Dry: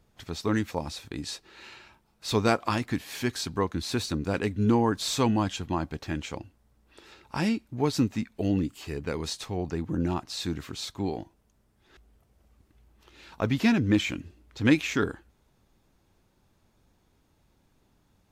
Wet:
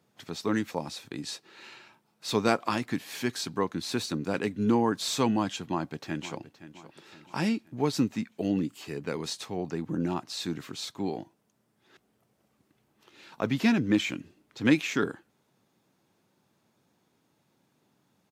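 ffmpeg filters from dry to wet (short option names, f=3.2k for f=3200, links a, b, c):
-filter_complex "[0:a]asplit=2[a][b];[b]afade=t=in:st=5.69:d=0.01,afade=t=out:st=6.38:d=0.01,aecho=0:1:520|1040|1560|2080:0.188365|0.0847642|0.0381439|0.0171648[c];[a][c]amix=inputs=2:normalize=0,highpass=f=130:w=0.5412,highpass=f=130:w=1.3066,volume=-1dB"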